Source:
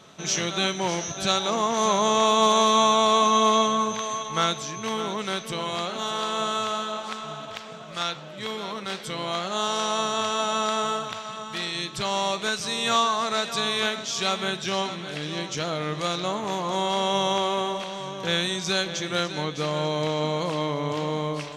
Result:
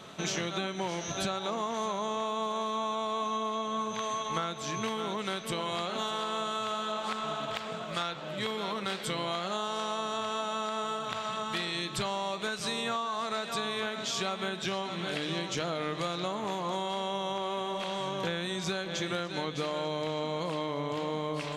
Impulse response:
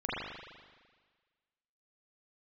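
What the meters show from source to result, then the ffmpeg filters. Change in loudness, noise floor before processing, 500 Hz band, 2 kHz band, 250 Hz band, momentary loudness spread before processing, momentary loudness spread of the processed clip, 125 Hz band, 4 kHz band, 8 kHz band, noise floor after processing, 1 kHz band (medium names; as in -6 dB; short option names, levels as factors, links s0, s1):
-8.0 dB, -39 dBFS, -7.0 dB, -6.5 dB, -6.5 dB, 12 LU, 2 LU, -6.0 dB, -8.5 dB, -10.5 dB, -39 dBFS, -8.5 dB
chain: -filter_complex "[0:a]equalizer=f=5800:t=o:w=0.42:g=-6,bandreject=f=50:t=h:w=6,bandreject=f=100:t=h:w=6,bandreject=f=150:t=h:w=6,acrossover=split=2000[s0][s1];[s1]alimiter=limit=0.0631:level=0:latency=1:release=201[s2];[s0][s2]amix=inputs=2:normalize=0,acompressor=threshold=0.0251:ratio=10,volume=1.41"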